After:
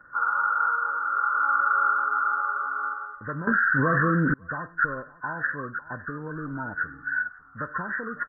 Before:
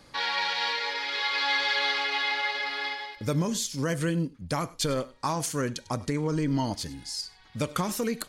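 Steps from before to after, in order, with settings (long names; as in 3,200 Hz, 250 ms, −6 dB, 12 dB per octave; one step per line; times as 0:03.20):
hearing-aid frequency compression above 1,000 Hz 4 to 1
parametric band 1,400 Hz +13.5 dB 0.4 octaves
on a send: single-tap delay 554 ms −20.5 dB
0:03.47–0:04.34: on the sum: envelope flattener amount 100%
level −8 dB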